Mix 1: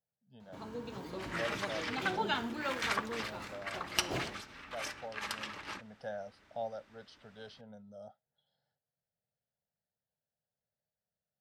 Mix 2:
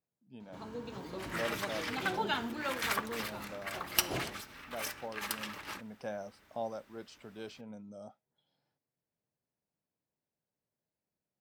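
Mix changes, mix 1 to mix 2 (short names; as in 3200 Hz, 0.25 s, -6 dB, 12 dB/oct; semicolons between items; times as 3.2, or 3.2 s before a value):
speech: remove fixed phaser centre 1600 Hz, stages 8; second sound: remove LPF 6600 Hz 12 dB/oct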